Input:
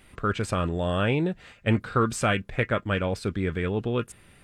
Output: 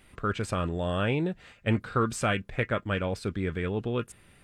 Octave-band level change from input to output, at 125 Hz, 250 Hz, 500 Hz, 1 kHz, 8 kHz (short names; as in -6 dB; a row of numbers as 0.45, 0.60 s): -3.0, -3.0, -3.0, -3.0, -3.0 dB